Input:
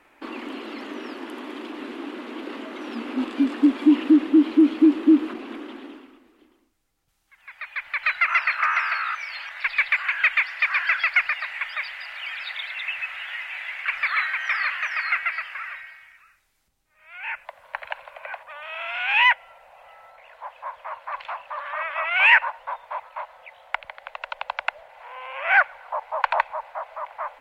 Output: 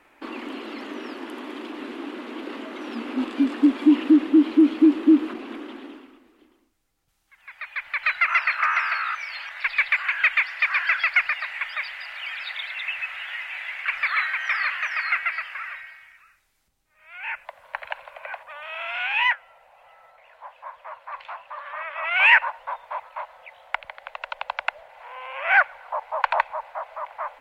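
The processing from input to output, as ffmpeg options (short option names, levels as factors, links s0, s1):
-filter_complex "[0:a]asplit=3[s0][s1][s2];[s0]afade=t=out:st=19.07:d=0.02[s3];[s1]flanger=delay=5:depth=8.5:regen=67:speed=1.2:shape=triangular,afade=t=in:st=19.07:d=0.02,afade=t=out:st=22.02:d=0.02[s4];[s2]afade=t=in:st=22.02:d=0.02[s5];[s3][s4][s5]amix=inputs=3:normalize=0"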